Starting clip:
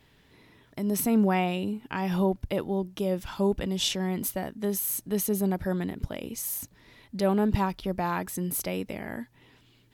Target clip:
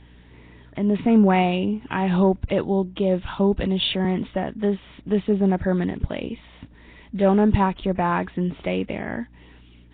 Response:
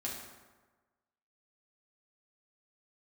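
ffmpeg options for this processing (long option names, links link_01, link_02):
-filter_complex "[0:a]asettb=1/sr,asplit=3[link_01][link_02][link_03];[link_01]atrim=end=3.394[link_04];[link_02]atrim=start=3.39:end=4.05,asetpts=PTS-STARTPTS,afade=type=in:duration=0.004:curve=qsin,afade=type=out:start_time=0.656:duration=0.004:curve=qsin,acrossover=split=280|3000[link_05][link_06][link_07];[link_06]acompressor=threshold=-27dB:ratio=6[link_08];[link_05][link_08][link_07]amix=inputs=3:normalize=0[link_09];[link_03]atrim=start=4.046[link_10];[link_04][link_09]acrossfade=duration=0.004:curve1=hsin:curve2=qsin[link_11];[link_11][link_10]acrossfade=duration=0.004:curve1=qsin:curve2=hsin,aeval=exprs='val(0)+0.00158*(sin(2*PI*60*n/s)+sin(2*PI*2*60*n/s)/2+sin(2*PI*3*60*n/s)/3+sin(2*PI*4*60*n/s)/4+sin(2*PI*5*60*n/s)/5)':channel_layout=same,acontrast=89" -ar 8000 -c:a nellymoser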